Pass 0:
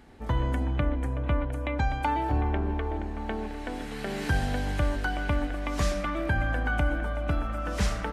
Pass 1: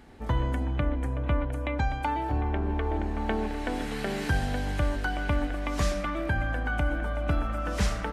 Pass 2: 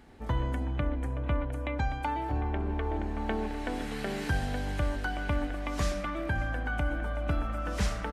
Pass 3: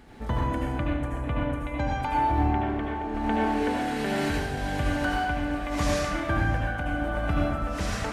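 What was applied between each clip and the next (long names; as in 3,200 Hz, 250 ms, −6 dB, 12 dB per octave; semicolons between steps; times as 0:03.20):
speech leveller within 4 dB 0.5 s
single-tap delay 563 ms −22 dB; level −3 dB
in parallel at −2 dB: brickwall limiter −27 dBFS, peak gain reduction 10.5 dB; on the sum: sample-and-hold tremolo 3.5 Hz; convolution reverb RT60 0.95 s, pre-delay 68 ms, DRR −3.5 dB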